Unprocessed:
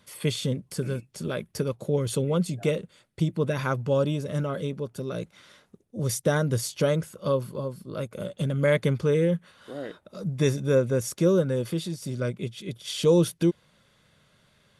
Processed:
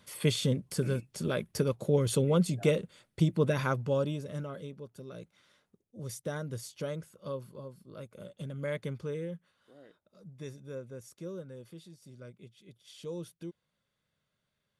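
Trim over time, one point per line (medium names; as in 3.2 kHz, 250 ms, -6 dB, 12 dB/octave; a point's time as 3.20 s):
3.47 s -1 dB
4.73 s -13 dB
9.04 s -13 dB
9.76 s -20 dB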